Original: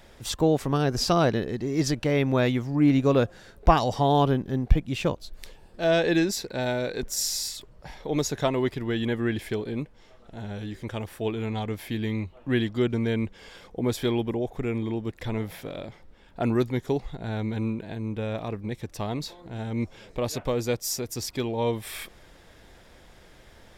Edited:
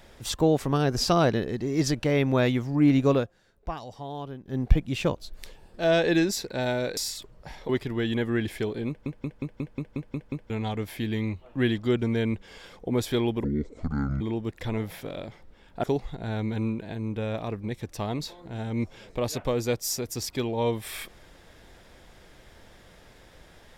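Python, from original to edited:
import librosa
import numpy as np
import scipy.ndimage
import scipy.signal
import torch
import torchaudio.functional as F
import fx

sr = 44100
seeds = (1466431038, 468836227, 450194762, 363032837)

y = fx.edit(x, sr, fx.fade_down_up(start_s=3.12, length_s=1.49, db=-15.5, fade_s=0.17),
    fx.cut(start_s=6.97, length_s=0.39),
    fx.cut(start_s=8.08, length_s=0.52),
    fx.stutter_over(start_s=9.79, slice_s=0.18, count=9),
    fx.speed_span(start_s=14.35, length_s=0.46, speed=0.6),
    fx.cut(start_s=16.44, length_s=0.4), tone=tone)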